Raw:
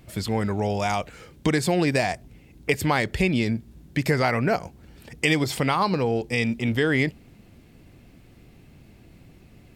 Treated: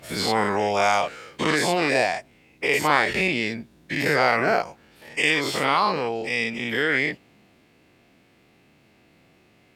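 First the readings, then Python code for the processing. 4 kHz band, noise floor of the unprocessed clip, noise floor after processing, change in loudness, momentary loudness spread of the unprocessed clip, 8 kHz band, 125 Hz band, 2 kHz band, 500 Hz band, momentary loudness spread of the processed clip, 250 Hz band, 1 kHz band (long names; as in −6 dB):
+4.5 dB, −52 dBFS, −59 dBFS, +1.5 dB, 7 LU, +2.0 dB, −9.0 dB, +5.0 dB, +1.5 dB, 10 LU, −4.0 dB, +4.5 dB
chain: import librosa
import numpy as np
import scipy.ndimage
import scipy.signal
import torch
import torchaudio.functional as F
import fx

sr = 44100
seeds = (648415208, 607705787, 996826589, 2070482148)

y = fx.spec_dilate(x, sr, span_ms=120)
y = fx.highpass(y, sr, hz=640.0, slope=6)
y = fx.high_shelf(y, sr, hz=6600.0, db=-10.5)
y = fx.rider(y, sr, range_db=10, speed_s=2.0)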